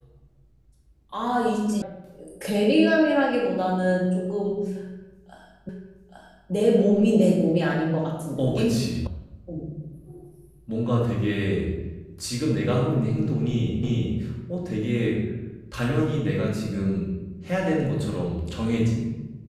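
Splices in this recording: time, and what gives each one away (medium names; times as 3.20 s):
1.82 s: sound stops dead
5.69 s: repeat of the last 0.83 s
9.07 s: sound stops dead
13.83 s: repeat of the last 0.36 s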